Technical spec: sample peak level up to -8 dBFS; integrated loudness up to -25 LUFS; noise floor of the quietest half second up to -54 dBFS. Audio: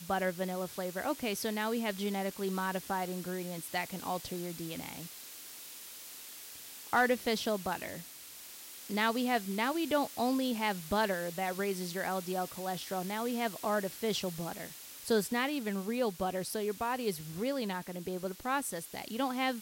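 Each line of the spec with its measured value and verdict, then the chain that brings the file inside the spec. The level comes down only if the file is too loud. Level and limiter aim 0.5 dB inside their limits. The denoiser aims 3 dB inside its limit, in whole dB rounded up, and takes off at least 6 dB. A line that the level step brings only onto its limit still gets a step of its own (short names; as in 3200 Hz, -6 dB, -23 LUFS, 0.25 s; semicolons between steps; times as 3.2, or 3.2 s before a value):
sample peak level -18.0 dBFS: OK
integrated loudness -34.5 LUFS: OK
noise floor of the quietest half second -50 dBFS: fail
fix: denoiser 7 dB, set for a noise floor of -50 dBFS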